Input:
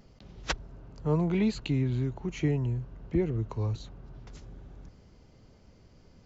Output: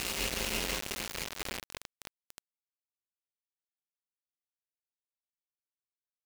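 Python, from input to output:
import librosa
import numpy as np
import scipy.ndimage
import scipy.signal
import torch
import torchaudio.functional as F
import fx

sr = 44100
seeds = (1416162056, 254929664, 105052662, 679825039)

y = fx.spec_delay(x, sr, highs='late', ms=165)
y = fx.rev_fdn(y, sr, rt60_s=0.8, lf_ratio=1.0, hf_ratio=0.9, size_ms=28.0, drr_db=16.0)
y = fx.spec_gate(y, sr, threshold_db=-15, keep='weak')
y = fx.paulstretch(y, sr, seeds[0], factor=11.0, window_s=0.5, from_s=1.74)
y = fx.echo_wet_bandpass(y, sr, ms=92, feedback_pct=71, hz=900.0, wet_db=-3)
y = fx.quant_dither(y, sr, seeds[1], bits=6, dither='none')
y = y * librosa.db_to_amplitude(7.0)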